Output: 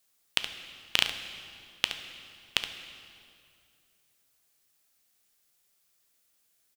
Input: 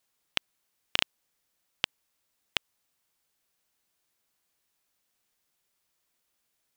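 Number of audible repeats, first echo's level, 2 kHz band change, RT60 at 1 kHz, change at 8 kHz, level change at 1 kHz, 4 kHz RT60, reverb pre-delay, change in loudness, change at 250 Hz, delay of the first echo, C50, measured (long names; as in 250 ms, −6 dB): 1, −10.0 dB, +2.5 dB, 2.3 s, +6.5 dB, +0.5 dB, 1.9 s, 8 ms, +1.5 dB, +1.0 dB, 71 ms, 6.5 dB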